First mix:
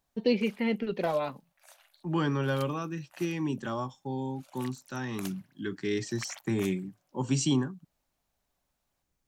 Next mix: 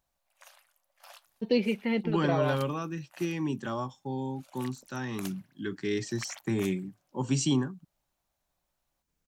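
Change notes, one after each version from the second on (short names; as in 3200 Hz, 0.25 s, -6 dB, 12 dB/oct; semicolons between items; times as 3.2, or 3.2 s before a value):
first voice: entry +1.25 s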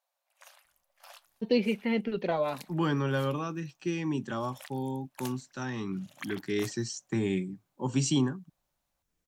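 second voice: entry +0.65 s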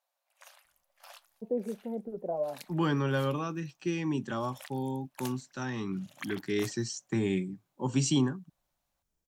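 first voice: add ladder low-pass 780 Hz, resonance 50%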